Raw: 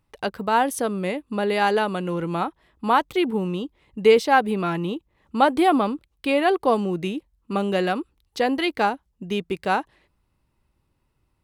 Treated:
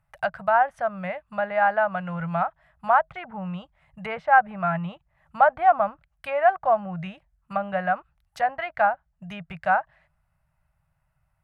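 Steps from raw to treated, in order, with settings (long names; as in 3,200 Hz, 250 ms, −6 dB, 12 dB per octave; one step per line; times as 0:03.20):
treble cut that deepens with the level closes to 1,700 Hz, closed at −19 dBFS
drawn EQ curve 110 Hz 0 dB, 160 Hz +5 dB, 270 Hz −27 dB, 430 Hz −24 dB, 640 Hz +8 dB, 1,000 Hz −2 dB, 1,500 Hz +7 dB, 3,800 Hz −10 dB, 13,000 Hz 0 dB
level −1.5 dB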